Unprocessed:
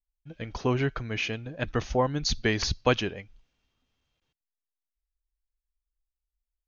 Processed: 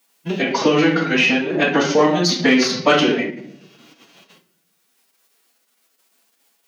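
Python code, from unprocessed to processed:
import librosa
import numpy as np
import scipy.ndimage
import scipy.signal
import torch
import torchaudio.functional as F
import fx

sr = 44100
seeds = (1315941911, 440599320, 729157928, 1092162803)

y = fx.room_shoebox(x, sr, seeds[0], volume_m3=72.0, walls='mixed', distance_m=1.2)
y = 10.0 ** (-10.5 / 20.0) * np.tanh(y / 10.0 ** (-10.5 / 20.0))
y = fx.pitch_keep_formants(y, sr, semitones=3.0)
y = scipy.signal.sosfilt(scipy.signal.butter(6, 190.0, 'highpass', fs=sr, output='sos'), y)
y = fx.band_squash(y, sr, depth_pct=70)
y = F.gain(torch.from_numpy(y), 8.5).numpy()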